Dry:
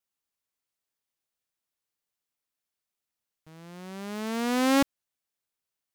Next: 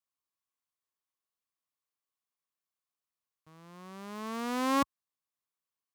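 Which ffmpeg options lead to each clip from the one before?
-af "highpass=60,equalizer=f=1.1k:t=o:w=0.27:g=12,volume=-7.5dB"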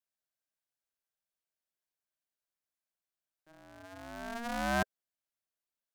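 -af "aeval=exprs='val(0)*sin(2*PI*470*n/s)':c=same"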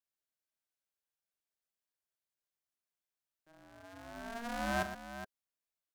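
-af "aecho=1:1:43|118|418:0.266|0.282|0.266,volume=-3.5dB"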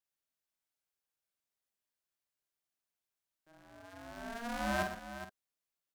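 -filter_complex "[0:a]asplit=2[a][b];[b]adelay=48,volume=-8dB[c];[a][c]amix=inputs=2:normalize=0"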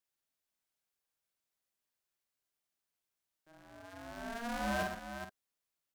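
-af "asoftclip=type=tanh:threshold=-28dB,volume=1.5dB"

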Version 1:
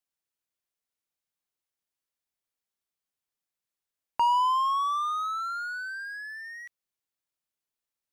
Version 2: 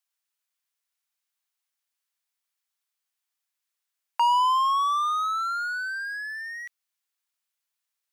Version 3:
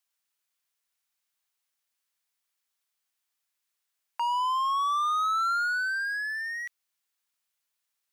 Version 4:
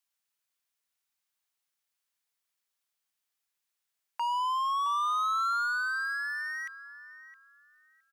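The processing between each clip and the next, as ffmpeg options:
-af "highpass=1k,volume=5.5dB"
-af "alimiter=level_in=2dB:limit=-24dB:level=0:latency=1,volume=-2dB,volume=2dB"
-filter_complex "[0:a]asplit=2[a][b];[b]adelay=665,lowpass=f=1.2k:p=1,volume=-9.5dB,asplit=2[c][d];[d]adelay=665,lowpass=f=1.2k:p=1,volume=0.36,asplit=2[e][f];[f]adelay=665,lowpass=f=1.2k:p=1,volume=0.36,asplit=2[g][h];[h]adelay=665,lowpass=f=1.2k:p=1,volume=0.36[i];[a][c][e][g][i]amix=inputs=5:normalize=0,volume=-2.5dB"

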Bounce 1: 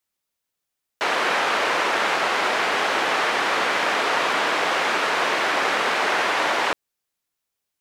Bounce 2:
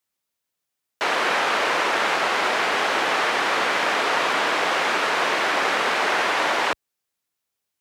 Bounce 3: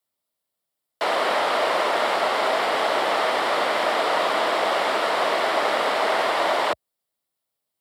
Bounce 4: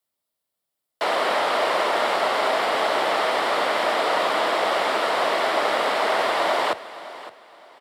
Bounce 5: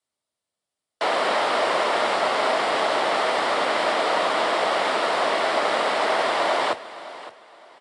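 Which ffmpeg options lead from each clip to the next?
-af "highpass=55"
-af "afreqshift=26,equalizer=f=630:t=o:w=0.33:g=7,equalizer=f=1.6k:t=o:w=0.33:g=-6,equalizer=f=2.5k:t=o:w=0.33:g=-7,equalizer=f=6.3k:t=o:w=0.33:g=-10"
-af "aecho=1:1:563|1126|1689:0.158|0.046|0.0133"
-ar 22050 -c:a aac -b:a 48k

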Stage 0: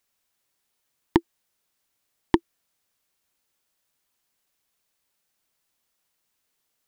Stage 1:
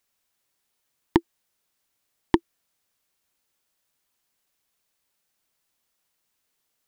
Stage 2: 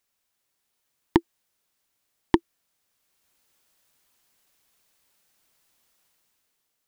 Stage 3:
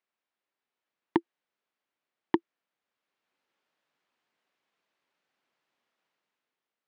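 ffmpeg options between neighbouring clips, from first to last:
-af anull
-af "dynaudnorm=f=130:g=11:m=9dB,volume=-1.5dB"
-af "highpass=210,lowpass=2.7k,volume=-5dB"

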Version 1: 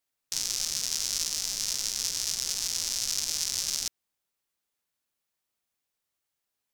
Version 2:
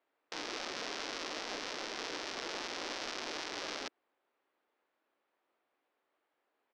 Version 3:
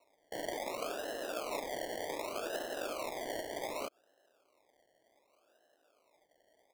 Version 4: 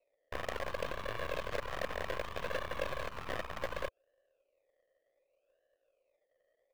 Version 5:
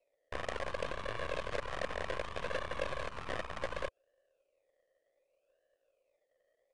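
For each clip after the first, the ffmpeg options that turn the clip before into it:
-filter_complex "[0:a]acrossover=split=220 3900:gain=0.141 1 0.178[a][b][c];[a][b][c]amix=inputs=3:normalize=0,alimiter=level_in=0.5dB:limit=-24dB:level=0:latency=1:release=49,volume=-0.5dB,firequalizer=gain_entry='entry(170,0);entry(300,11);entry(2800,-1);entry(11000,-23)':delay=0.05:min_phase=1,volume=4.5dB"
-af "alimiter=level_in=9dB:limit=-24dB:level=0:latency=1:release=82,volume=-9dB,lowpass=f=630:t=q:w=4.3,acrusher=samples=27:mix=1:aa=0.000001:lfo=1:lforange=16.2:lforate=0.66,volume=6dB"
-filter_complex "[0:a]asplit=3[a][b][c];[a]bandpass=f=530:t=q:w=8,volume=0dB[d];[b]bandpass=f=1.84k:t=q:w=8,volume=-6dB[e];[c]bandpass=f=2.48k:t=q:w=8,volume=-9dB[f];[d][e][f]amix=inputs=3:normalize=0,aeval=exprs='0.0237*(cos(1*acos(clip(val(0)/0.0237,-1,1)))-cos(1*PI/2))+0.00473*(cos(7*acos(clip(val(0)/0.0237,-1,1)))-cos(7*PI/2))+0.00335*(cos(8*acos(clip(val(0)/0.0237,-1,1)))-cos(8*PI/2))':c=same,acrusher=bits=6:mode=log:mix=0:aa=0.000001,volume=9.5dB"
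-af "aresample=22050,aresample=44100"

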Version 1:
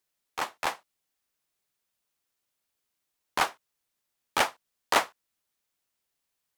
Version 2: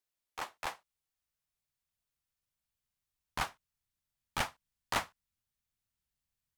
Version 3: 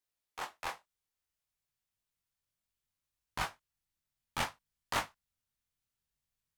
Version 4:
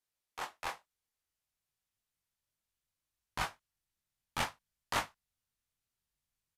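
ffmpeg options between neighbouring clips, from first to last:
-af "asubboost=boost=10.5:cutoff=130,volume=-8.5dB"
-af "flanger=delay=19.5:depth=3.2:speed=0.6,volume=2.5dB"
-af "aresample=32000,aresample=44100"

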